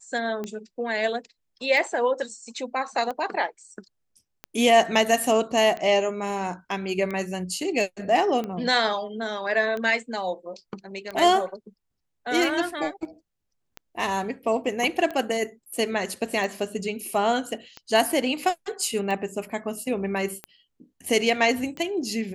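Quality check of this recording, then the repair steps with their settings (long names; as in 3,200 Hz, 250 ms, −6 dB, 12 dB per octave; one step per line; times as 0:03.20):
scratch tick 45 rpm −19 dBFS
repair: click removal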